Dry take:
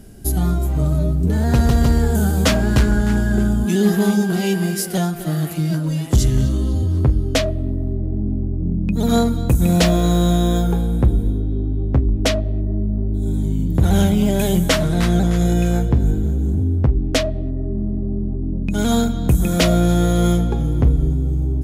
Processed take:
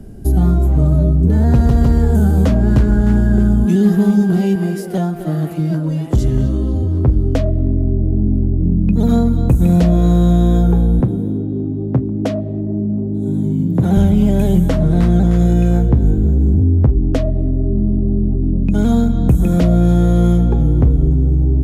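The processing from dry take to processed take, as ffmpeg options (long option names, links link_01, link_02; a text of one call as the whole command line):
ffmpeg -i in.wav -filter_complex "[0:a]asettb=1/sr,asplit=3[link_01][link_02][link_03];[link_01]atrim=end=4.554[link_04];[link_02]atrim=start=4.55:end=7.07,asetpts=PTS-STARTPTS,afade=type=in:duration=0.004:curve=qsin,afade=type=out:start_time=2.516:duration=0.004:curve=qsin,bass=frequency=250:gain=-6,treble=frequency=4000:gain=-3[link_05];[link_03]atrim=start=7.066[link_06];[link_04][link_05]acrossfade=duration=0.004:curve1=hsin:curve2=qsin[link_07];[link_07][link_06]acrossfade=duration=0.004:curve1=qsin:curve2=hsin,asettb=1/sr,asplit=3[link_08][link_09][link_10];[link_08]atrim=end=11.004[link_11];[link_09]atrim=start=11:end=13.97,asetpts=PTS-STARTPTS,afade=type=in:duration=0.004:curve=qsin,afade=type=out:start_time=2.966:duration=0.004:curve=qsin,highpass=frequency=120:width=0.5412,highpass=frequency=120:width=1.3066[link_12];[link_10]atrim=start=13.966[link_13];[link_11][link_12]acrossfade=duration=0.004:curve1=hsin:curve2=qsin[link_14];[link_14][link_13]acrossfade=duration=0.004:curve1=qsin:curve2=hsin,tiltshelf=frequency=1200:gain=7.5,acrossover=split=230|980[link_15][link_16][link_17];[link_15]acompressor=threshold=-9dB:ratio=4[link_18];[link_16]acompressor=threshold=-20dB:ratio=4[link_19];[link_17]acompressor=threshold=-33dB:ratio=4[link_20];[link_18][link_19][link_20]amix=inputs=3:normalize=0" out.wav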